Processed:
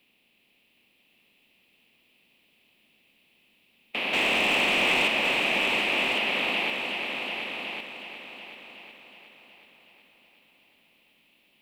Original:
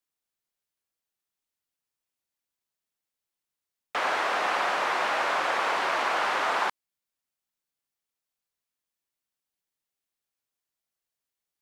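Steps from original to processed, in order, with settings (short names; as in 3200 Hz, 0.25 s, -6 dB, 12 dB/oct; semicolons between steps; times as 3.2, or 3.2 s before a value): per-bin compression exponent 0.6; EQ curve 130 Hz 0 dB, 220 Hz +9 dB, 320 Hz 0 dB, 1500 Hz -18 dB, 2600 Hz +11 dB, 6300 Hz -12 dB, 12000 Hz +2 dB; 4.13–5.08 sample leveller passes 2; bell 7700 Hz -5.5 dB 2.7 oct; on a send: multi-head echo 0.369 s, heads all three, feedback 41%, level -9 dB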